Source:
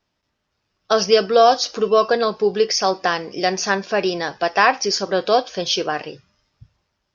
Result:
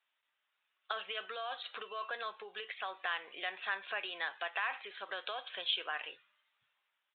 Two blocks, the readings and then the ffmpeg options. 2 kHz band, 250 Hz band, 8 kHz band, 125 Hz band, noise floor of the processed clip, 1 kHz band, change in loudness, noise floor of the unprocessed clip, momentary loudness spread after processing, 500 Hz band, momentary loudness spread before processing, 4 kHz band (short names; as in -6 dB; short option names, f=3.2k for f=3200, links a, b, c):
-13.5 dB, -35.0 dB, n/a, under -40 dB, -84 dBFS, -22.0 dB, -20.5 dB, -75 dBFS, 8 LU, -29.5 dB, 7 LU, -16.0 dB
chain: -af "alimiter=limit=-10.5dB:level=0:latency=1:release=22,acompressor=threshold=-23dB:ratio=6,aresample=8000,aresample=44100,highpass=1.4k,volume=-3dB"